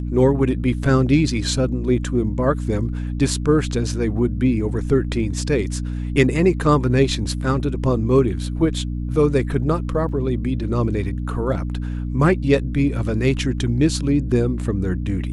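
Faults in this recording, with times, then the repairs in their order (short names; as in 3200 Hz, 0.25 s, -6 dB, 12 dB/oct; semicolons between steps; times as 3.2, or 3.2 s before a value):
hum 60 Hz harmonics 5 -25 dBFS
10.09 gap 2.3 ms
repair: de-hum 60 Hz, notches 5; interpolate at 10.09, 2.3 ms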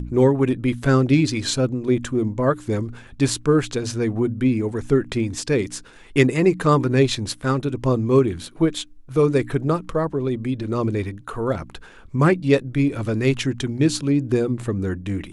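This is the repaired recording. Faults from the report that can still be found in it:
none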